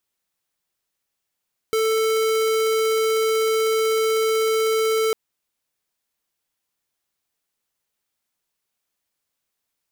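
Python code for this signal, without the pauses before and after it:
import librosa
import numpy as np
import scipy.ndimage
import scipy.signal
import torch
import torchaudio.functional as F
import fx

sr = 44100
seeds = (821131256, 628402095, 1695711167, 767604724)

y = fx.tone(sr, length_s=3.4, wave='square', hz=442.0, level_db=-20.0)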